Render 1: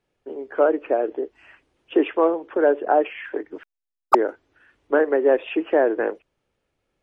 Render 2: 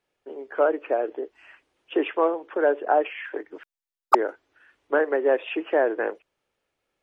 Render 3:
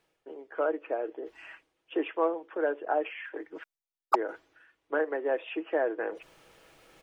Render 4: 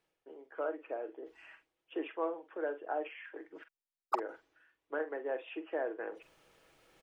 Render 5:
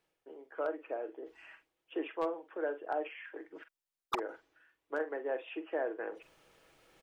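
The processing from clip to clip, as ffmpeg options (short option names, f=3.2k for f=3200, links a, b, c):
-af "lowshelf=f=310:g=-12"
-af "aecho=1:1:6.2:0.32,areverse,acompressor=mode=upward:threshold=-28dB:ratio=2.5,areverse,volume=-7.5dB"
-filter_complex "[0:a]asplit=2[a][b];[b]adelay=46,volume=-11.5dB[c];[a][c]amix=inputs=2:normalize=0,volume=-8dB"
-af "aeval=exprs='0.0562*(abs(mod(val(0)/0.0562+3,4)-2)-1)':c=same,volume=1dB"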